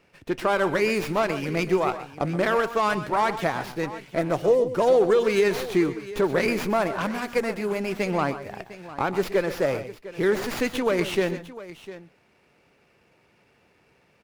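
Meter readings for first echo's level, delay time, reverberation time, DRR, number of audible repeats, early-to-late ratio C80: -14.0 dB, 0.125 s, none, none, 2, none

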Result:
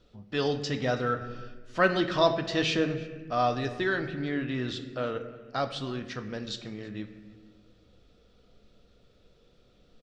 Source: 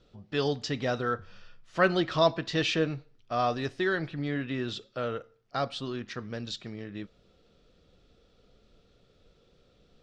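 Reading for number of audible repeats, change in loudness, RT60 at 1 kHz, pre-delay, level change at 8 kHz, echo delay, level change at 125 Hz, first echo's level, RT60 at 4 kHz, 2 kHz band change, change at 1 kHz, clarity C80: 1, +1.0 dB, 1.1 s, 3 ms, +0.5 dB, 0.327 s, +0.5 dB, -22.5 dB, 0.90 s, +1.0 dB, +1.5 dB, 11.5 dB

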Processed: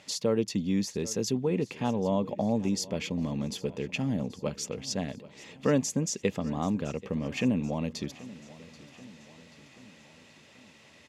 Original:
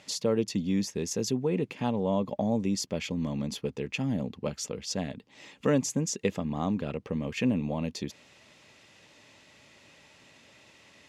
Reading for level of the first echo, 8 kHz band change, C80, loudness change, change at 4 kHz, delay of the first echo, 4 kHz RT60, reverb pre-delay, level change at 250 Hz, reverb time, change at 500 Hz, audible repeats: -19.0 dB, 0.0 dB, none, 0.0 dB, 0.0 dB, 0.783 s, none, none, 0.0 dB, none, 0.0 dB, 4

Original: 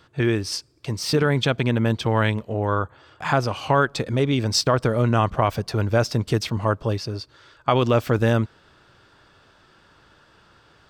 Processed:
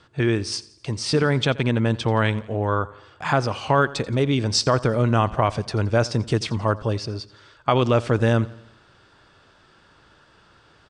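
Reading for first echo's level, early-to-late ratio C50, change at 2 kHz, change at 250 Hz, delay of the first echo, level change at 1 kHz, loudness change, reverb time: -20.0 dB, none, 0.0 dB, 0.0 dB, 86 ms, 0.0 dB, 0.0 dB, none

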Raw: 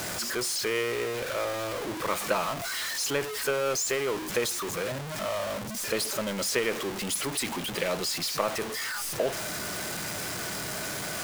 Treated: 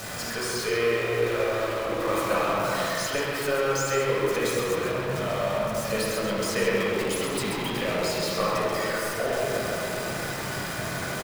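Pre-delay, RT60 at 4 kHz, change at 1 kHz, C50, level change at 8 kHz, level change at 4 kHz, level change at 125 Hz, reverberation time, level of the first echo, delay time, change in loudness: 4 ms, 1.5 s, +5.0 dB, -4.0 dB, -3.0 dB, -0.5 dB, +7.0 dB, 2.8 s, -5.5 dB, 0.133 s, +3.0 dB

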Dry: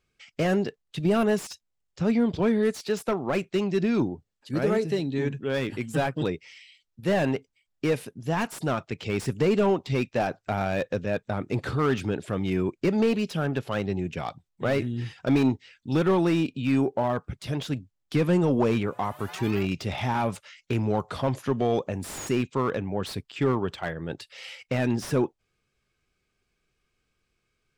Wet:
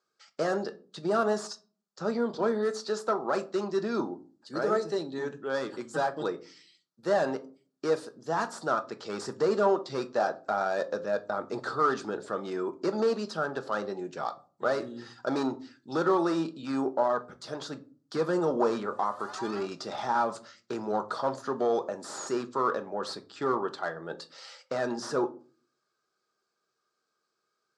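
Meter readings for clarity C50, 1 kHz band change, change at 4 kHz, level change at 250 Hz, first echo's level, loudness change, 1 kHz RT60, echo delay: 18.5 dB, +1.5 dB, -4.0 dB, -8.0 dB, none, -3.5 dB, 0.35 s, none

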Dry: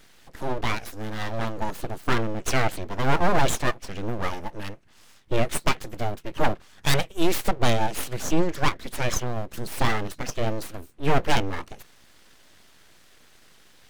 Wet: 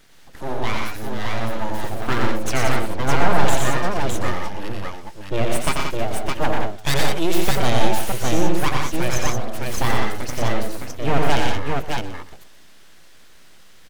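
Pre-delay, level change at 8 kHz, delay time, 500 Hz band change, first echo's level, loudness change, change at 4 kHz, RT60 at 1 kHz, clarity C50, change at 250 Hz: none, +4.0 dB, 88 ms, +4.0 dB, -4.0 dB, +3.5 dB, +4.0 dB, none, none, +4.0 dB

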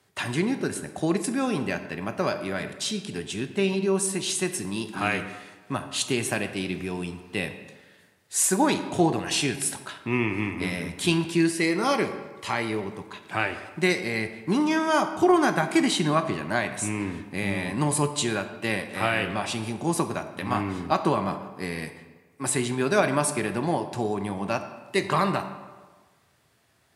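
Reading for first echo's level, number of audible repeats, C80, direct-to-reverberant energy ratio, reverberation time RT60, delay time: none, none, 11.5 dB, 8.5 dB, 1.4 s, none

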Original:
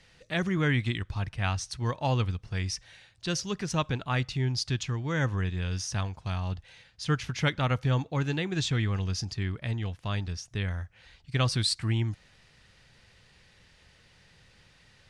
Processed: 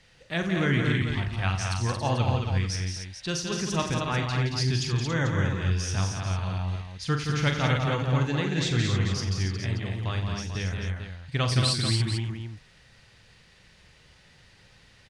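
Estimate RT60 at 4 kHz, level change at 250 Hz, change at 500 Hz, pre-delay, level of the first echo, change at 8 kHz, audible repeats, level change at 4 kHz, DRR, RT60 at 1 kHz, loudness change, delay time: none, +3.0 dB, +3.0 dB, none, -7.5 dB, +3.0 dB, 6, +3.0 dB, none, none, +3.0 dB, 42 ms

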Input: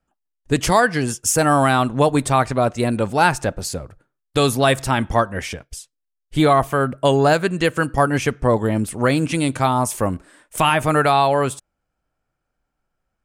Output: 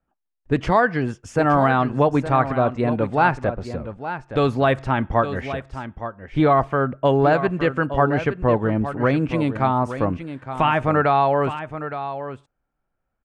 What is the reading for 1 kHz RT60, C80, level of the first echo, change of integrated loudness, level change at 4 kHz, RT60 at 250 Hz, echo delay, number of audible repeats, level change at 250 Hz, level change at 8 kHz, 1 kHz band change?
none, none, -11.0 dB, -2.0 dB, -10.5 dB, none, 0.866 s, 1, -1.0 dB, under -20 dB, -1.5 dB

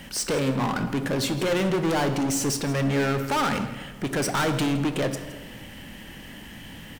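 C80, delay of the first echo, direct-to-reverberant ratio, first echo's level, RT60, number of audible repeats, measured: 10.5 dB, 0.165 s, 7.5 dB, -17.0 dB, 1.3 s, 1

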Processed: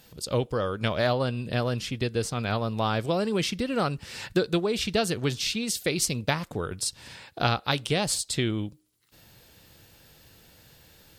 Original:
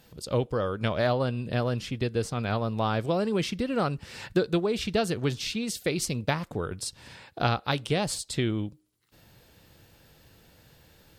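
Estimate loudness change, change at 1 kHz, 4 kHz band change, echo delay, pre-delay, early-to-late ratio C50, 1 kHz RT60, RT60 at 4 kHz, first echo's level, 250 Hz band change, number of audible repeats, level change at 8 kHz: +1.0 dB, +1.0 dB, +4.5 dB, none, none, none, none, none, none, 0.0 dB, none, +5.5 dB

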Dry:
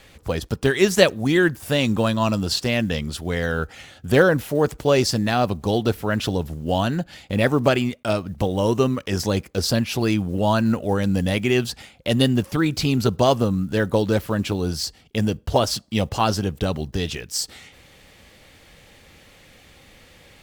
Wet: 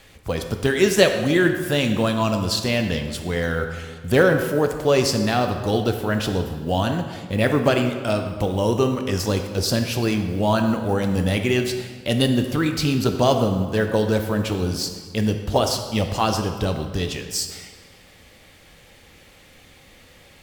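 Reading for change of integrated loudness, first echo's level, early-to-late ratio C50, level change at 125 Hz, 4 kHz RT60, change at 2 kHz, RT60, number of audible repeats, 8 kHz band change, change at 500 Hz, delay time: 0.0 dB, none, 7.0 dB, 0.0 dB, 1.2 s, 0.0 dB, 1.7 s, none, +1.0 dB, +0.5 dB, none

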